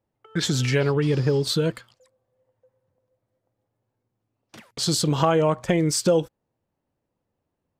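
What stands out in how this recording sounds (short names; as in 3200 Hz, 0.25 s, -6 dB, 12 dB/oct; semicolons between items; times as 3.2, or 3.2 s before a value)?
noise floor -81 dBFS; spectral tilt -5.0 dB/oct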